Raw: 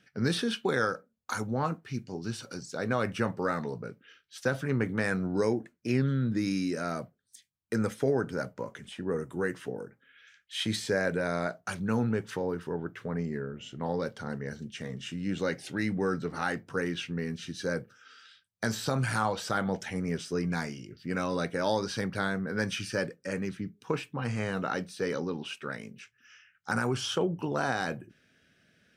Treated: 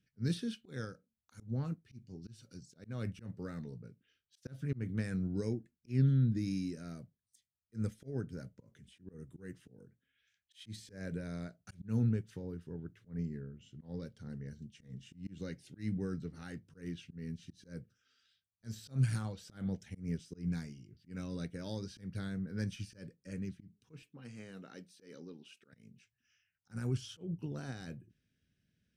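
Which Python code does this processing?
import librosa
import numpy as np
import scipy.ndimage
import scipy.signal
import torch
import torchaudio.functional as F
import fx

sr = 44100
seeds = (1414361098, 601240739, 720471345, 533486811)

y = fx.highpass(x, sr, hz=260.0, slope=12, at=(24.02, 25.73))
y = fx.tone_stack(y, sr, knobs='10-0-1')
y = fx.auto_swell(y, sr, attack_ms=141.0)
y = fx.upward_expand(y, sr, threshold_db=-59.0, expansion=1.5)
y = y * librosa.db_to_amplitude(15.0)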